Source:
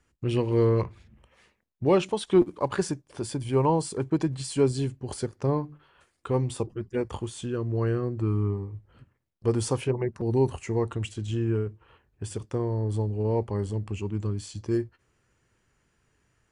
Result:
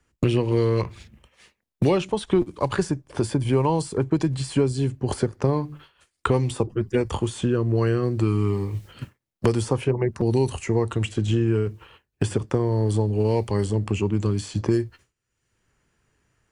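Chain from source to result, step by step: expander -46 dBFS; three-band squash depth 100%; gain +4 dB

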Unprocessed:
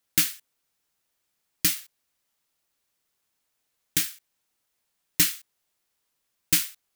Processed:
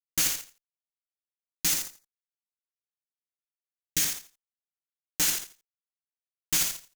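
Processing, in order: bell 6500 Hz +8 dB 0.36 oct; level quantiser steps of 10 dB; fuzz box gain 44 dB, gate -38 dBFS; 1.73–4.03 LFO notch saw down 2.6 Hz 720–3400 Hz; feedback echo 84 ms, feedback 18%, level -7 dB; gain -8 dB

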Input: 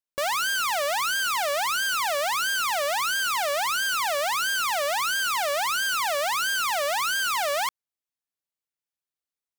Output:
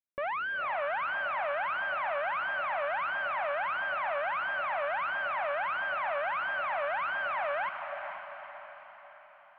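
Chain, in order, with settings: steep low-pass 2400 Hz 36 dB/oct; on a send: diffused feedback echo 0.458 s, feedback 52%, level -7 dB; on the sum: gain -6 dB

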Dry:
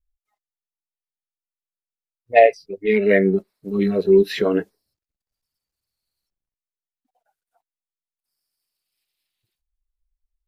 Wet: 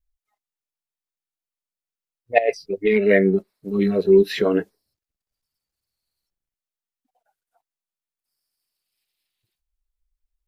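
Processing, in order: 2.38–2.97 negative-ratio compressor -19 dBFS, ratio -1

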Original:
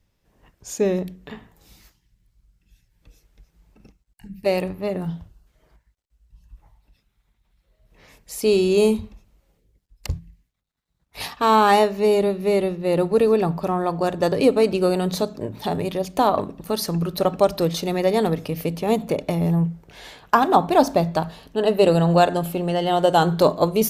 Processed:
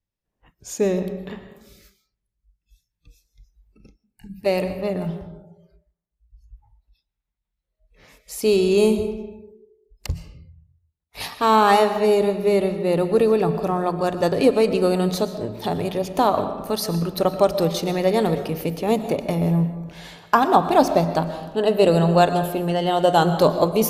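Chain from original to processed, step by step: digital reverb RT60 1.3 s, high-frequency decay 0.55×, pre-delay 80 ms, DRR 10 dB; spectral noise reduction 19 dB

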